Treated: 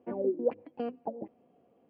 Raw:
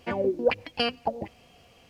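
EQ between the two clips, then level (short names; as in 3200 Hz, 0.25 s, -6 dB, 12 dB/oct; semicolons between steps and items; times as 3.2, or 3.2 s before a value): ladder band-pass 350 Hz, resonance 25%; +7.0 dB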